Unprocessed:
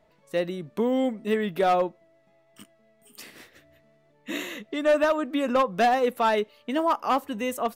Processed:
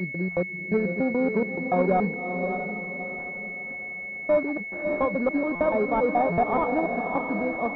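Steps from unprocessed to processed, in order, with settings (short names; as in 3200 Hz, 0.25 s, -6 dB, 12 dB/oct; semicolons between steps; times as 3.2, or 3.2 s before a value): slices in reverse order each 0.143 s, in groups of 5; bell 180 Hz +10 dB 0.25 oct; on a send: diffused feedback echo 0.6 s, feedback 41%, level -6 dB; on the sum: stuck buffer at 0.31/5.55/6.32, samples 256, times 9; pulse-width modulation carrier 2200 Hz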